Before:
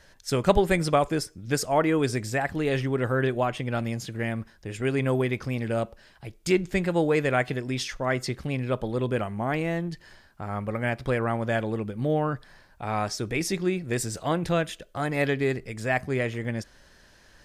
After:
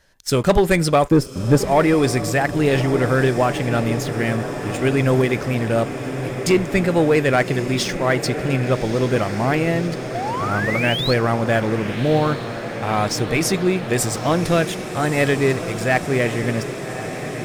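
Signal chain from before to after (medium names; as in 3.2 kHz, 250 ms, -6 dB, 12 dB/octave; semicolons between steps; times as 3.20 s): 1.11–1.68 s: tilt shelf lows +8.5 dB, about 1.3 kHz; 10.14–11.14 s: painted sound rise 660–4500 Hz -33 dBFS; treble shelf 11 kHz +6 dB; waveshaping leveller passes 2; echo that smears into a reverb 1173 ms, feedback 76%, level -11 dB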